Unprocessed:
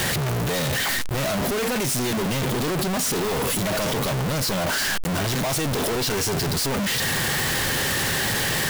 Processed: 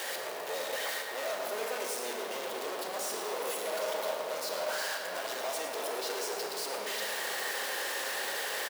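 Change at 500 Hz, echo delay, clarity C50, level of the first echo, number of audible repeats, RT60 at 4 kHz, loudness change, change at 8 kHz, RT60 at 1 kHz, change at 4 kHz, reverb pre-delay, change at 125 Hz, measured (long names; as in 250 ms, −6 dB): −8.0 dB, 110 ms, 1.5 dB, −10.0 dB, 1, 1.6 s, −11.5 dB, −12.5 dB, 2.8 s, −11.5 dB, 27 ms, below −35 dB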